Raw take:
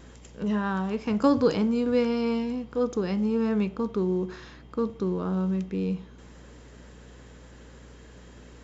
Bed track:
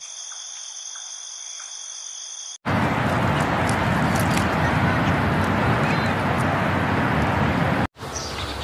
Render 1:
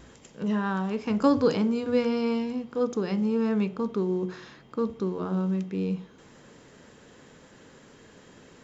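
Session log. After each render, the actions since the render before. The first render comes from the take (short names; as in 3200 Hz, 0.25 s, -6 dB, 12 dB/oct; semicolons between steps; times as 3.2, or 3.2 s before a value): de-hum 60 Hz, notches 10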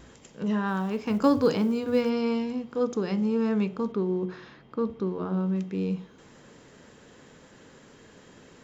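0.68–2.1 companded quantiser 8-bit; 3.92–5.56 air absorption 130 m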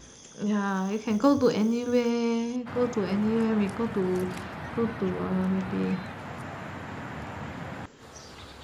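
add bed track -17 dB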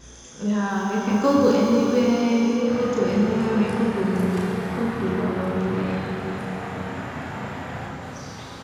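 doubler 34 ms -2.5 dB; plate-style reverb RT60 4.6 s, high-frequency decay 0.8×, DRR -2 dB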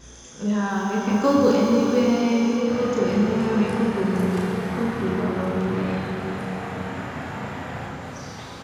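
thinning echo 0.618 s, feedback 76%, level -16.5 dB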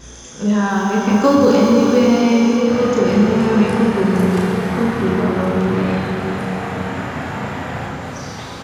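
gain +7 dB; limiter -3 dBFS, peak gain reduction 3 dB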